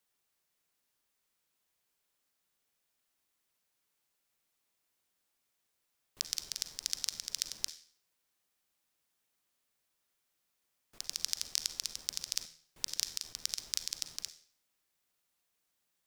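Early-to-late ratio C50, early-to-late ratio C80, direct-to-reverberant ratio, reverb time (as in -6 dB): 13.0 dB, 17.0 dB, 11.0 dB, 0.50 s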